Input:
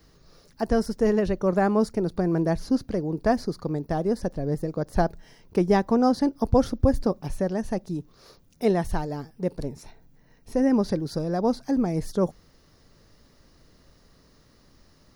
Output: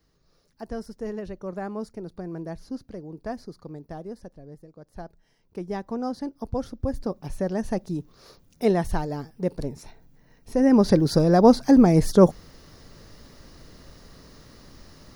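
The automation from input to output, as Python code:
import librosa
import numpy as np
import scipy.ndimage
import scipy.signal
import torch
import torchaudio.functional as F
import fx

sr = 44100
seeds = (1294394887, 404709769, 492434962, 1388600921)

y = fx.gain(x, sr, db=fx.line((3.95, -11.0), (4.69, -19.5), (5.97, -9.0), (6.72, -9.0), (7.62, 1.0), (10.56, 1.0), (11.0, 9.0)))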